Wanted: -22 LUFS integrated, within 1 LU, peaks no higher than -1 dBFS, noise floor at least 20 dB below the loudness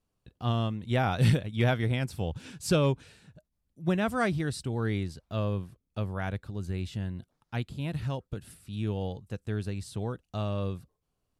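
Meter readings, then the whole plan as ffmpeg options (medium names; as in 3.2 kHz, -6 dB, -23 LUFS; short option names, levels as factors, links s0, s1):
loudness -31.5 LUFS; peak level -14.5 dBFS; loudness target -22.0 LUFS
-> -af "volume=2.99"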